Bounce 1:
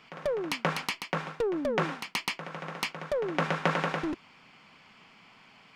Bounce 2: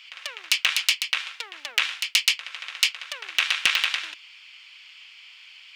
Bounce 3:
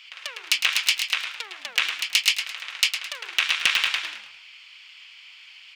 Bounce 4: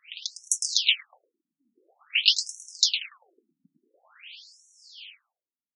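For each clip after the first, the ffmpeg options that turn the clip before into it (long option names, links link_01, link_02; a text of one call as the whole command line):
ffmpeg -i in.wav -af "aeval=exprs='0.316*(cos(1*acos(clip(val(0)/0.316,-1,1)))-cos(1*PI/2))+0.0891*(cos(6*acos(clip(val(0)/0.316,-1,1)))-cos(6*PI/2))':channel_layout=same,highpass=frequency=2900:width_type=q:width=1.9,aeval=exprs='0.237*(abs(mod(val(0)/0.237+3,4)-2)-1)':channel_layout=same,volume=8.5dB" out.wav
ffmpeg -i in.wav -filter_complex "[0:a]asplit=5[link_01][link_02][link_03][link_04][link_05];[link_02]adelay=107,afreqshift=-96,volume=-9dB[link_06];[link_03]adelay=214,afreqshift=-192,volume=-17.4dB[link_07];[link_04]adelay=321,afreqshift=-288,volume=-25.8dB[link_08];[link_05]adelay=428,afreqshift=-384,volume=-34.2dB[link_09];[link_01][link_06][link_07][link_08][link_09]amix=inputs=5:normalize=0" out.wav
ffmpeg -i in.wav -af "aexciter=amount=4.3:drive=7:freq=2600,bandreject=frequency=970:width=5.9,afftfilt=real='re*between(b*sr/1024,210*pow(8000/210,0.5+0.5*sin(2*PI*0.48*pts/sr))/1.41,210*pow(8000/210,0.5+0.5*sin(2*PI*0.48*pts/sr))*1.41)':imag='im*between(b*sr/1024,210*pow(8000/210,0.5+0.5*sin(2*PI*0.48*pts/sr))/1.41,210*pow(8000/210,0.5+0.5*sin(2*PI*0.48*pts/sr))*1.41)':win_size=1024:overlap=0.75,volume=-8dB" out.wav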